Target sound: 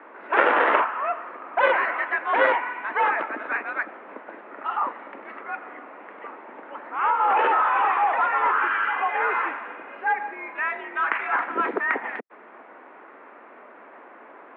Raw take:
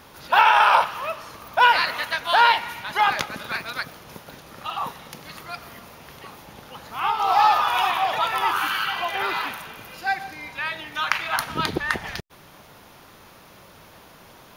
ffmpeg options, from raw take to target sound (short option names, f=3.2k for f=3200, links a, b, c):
-af "aeval=exprs='0.891*(cos(1*acos(clip(val(0)/0.891,-1,1)))-cos(1*PI/2))+0.398*(cos(7*acos(clip(val(0)/0.891,-1,1)))-cos(7*PI/2))':c=same,highpass=f=230:t=q:w=0.5412,highpass=f=230:t=q:w=1.307,lowpass=f=2.1k:t=q:w=0.5176,lowpass=f=2.1k:t=q:w=0.7071,lowpass=f=2.1k:t=q:w=1.932,afreqshift=54,volume=-2.5dB"